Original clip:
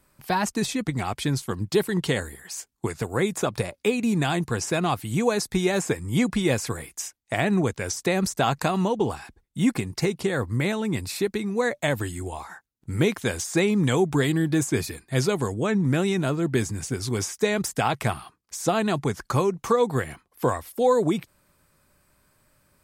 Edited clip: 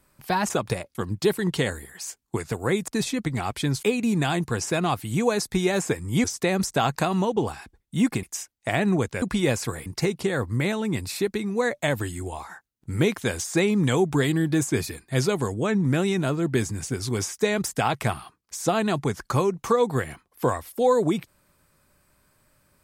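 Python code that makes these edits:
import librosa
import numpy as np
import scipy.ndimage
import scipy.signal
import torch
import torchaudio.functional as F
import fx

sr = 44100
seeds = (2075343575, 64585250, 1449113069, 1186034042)

y = fx.edit(x, sr, fx.swap(start_s=0.5, length_s=0.95, other_s=3.38, other_length_s=0.45),
    fx.swap(start_s=6.24, length_s=0.64, other_s=7.87, other_length_s=1.99), tone=tone)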